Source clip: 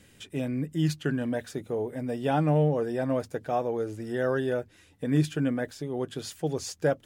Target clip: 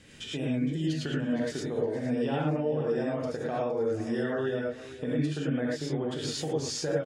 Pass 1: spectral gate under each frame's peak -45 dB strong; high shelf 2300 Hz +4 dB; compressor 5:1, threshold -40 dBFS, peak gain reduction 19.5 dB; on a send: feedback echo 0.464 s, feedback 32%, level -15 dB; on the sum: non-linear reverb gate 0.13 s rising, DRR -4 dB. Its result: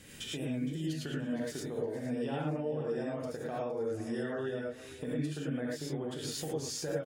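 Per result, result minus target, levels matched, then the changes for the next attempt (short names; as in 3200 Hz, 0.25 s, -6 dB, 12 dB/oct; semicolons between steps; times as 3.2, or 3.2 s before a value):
compressor: peak gain reduction +6 dB; 8000 Hz band +3.5 dB
change: compressor 5:1, threshold -32.5 dBFS, peak gain reduction 13.5 dB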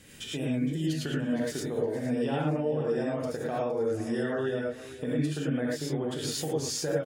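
8000 Hz band +3.5 dB
add after spectral gate: LPF 6500 Hz 12 dB/oct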